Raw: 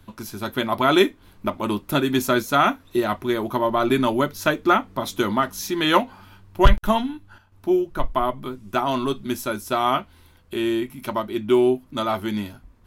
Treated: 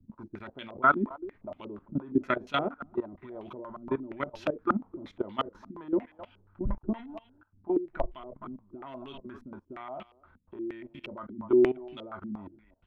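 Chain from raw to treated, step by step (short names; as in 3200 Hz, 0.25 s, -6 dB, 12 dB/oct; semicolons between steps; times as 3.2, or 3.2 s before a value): speakerphone echo 0.26 s, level -17 dB; level quantiser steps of 18 dB; stepped low-pass 8.5 Hz 230–2900 Hz; gain -8.5 dB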